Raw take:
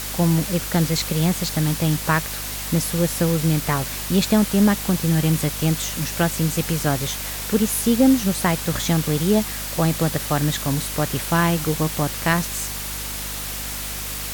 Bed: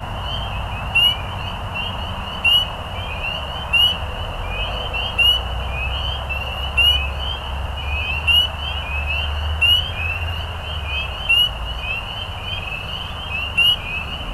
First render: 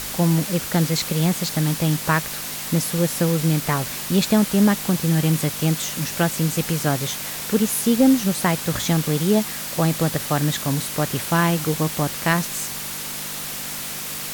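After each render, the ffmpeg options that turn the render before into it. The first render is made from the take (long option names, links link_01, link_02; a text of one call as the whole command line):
ffmpeg -i in.wav -af "bandreject=frequency=50:width_type=h:width=4,bandreject=frequency=100:width_type=h:width=4" out.wav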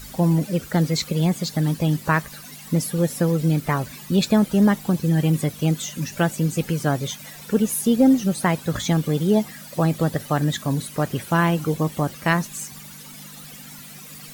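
ffmpeg -i in.wav -af "afftdn=noise_reduction=15:noise_floor=-30" out.wav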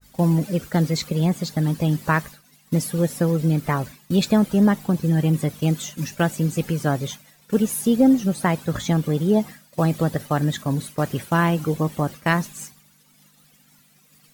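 ffmpeg -i in.wav -af "agate=range=-33dB:threshold=-29dB:ratio=3:detection=peak,adynamicequalizer=threshold=0.0126:dfrequency=1900:dqfactor=0.7:tfrequency=1900:tqfactor=0.7:attack=5:release=100:ratio=0.375:range=2.5:mode=cutabove:tftype=highshelf" out.wav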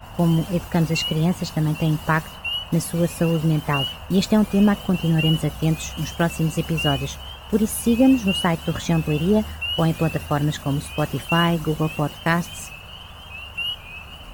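ffmpeg -i in.wav -i bed.wav -filter_complex "[1:a]volume=-12dB[link_01];[0:a][link_01]amix=inputs=2:normalize=0" out.wav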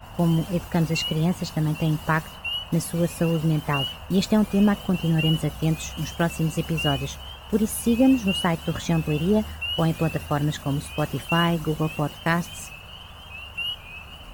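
ffmpeg -i in.wav -af "volume=-2.5dB" out.wav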